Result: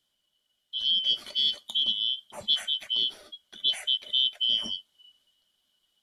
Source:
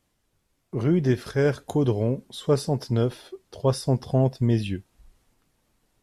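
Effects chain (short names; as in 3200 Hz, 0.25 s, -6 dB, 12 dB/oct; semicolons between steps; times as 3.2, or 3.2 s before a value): four-band scrambler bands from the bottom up 3412; low shelf 60 Hz +7 dB; small resonant body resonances 220/600/1500 Hz, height 7 dB; gain -5 dB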